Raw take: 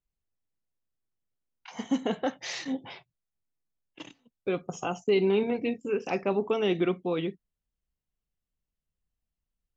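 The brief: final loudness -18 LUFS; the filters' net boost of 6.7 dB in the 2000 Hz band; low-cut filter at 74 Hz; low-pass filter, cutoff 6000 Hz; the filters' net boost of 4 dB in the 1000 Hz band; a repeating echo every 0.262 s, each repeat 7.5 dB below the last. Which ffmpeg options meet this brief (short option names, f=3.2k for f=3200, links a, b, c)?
-af "highpass=74,lowpass=6k,equalizer=f=1k:t=o:g=4,equalizer=f=2k:t=o:g=7.5,aecho=1:1:262|524|786|1048|1310:0.422|0.177|0.0744|0.0312|0.0131,volume=10dB"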